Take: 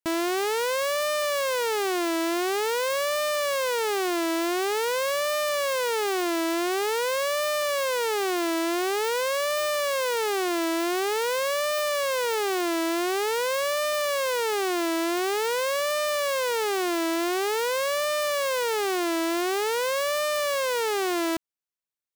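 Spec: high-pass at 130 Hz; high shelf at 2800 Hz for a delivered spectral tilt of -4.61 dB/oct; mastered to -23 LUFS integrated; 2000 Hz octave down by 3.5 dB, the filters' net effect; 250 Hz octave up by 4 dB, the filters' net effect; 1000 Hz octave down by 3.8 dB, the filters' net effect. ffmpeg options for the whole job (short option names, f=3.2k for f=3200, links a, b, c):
-af "highpass=130,equalizer=f=250:t=o:g=8,equalizer=f=1k:t=o:g=-4.5,equalizer=f=2k:t=o:g=-4.5,highshelf=f=2.8k:g=3.5,volume=1.5dB"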